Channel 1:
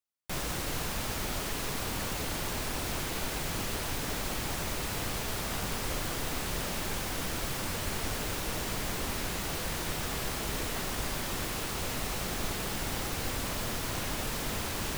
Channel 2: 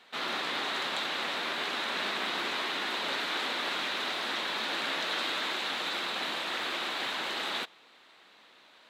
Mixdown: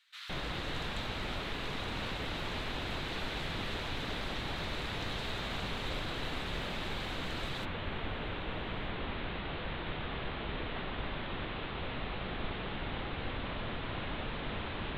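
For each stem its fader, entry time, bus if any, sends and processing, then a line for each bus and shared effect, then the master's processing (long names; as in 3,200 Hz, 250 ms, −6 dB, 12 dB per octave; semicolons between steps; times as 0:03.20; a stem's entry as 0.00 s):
−3.0 dB, 0.00 s, no send, Butterworth low-pass 3,800 Hz 72 dB per octave
−16.5 dB, 0.00 s, no send, high-pass filter 1,300 Hz 24 dB per octave; high-shelf EQ 2,000 Hz +9 dB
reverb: not used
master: no processing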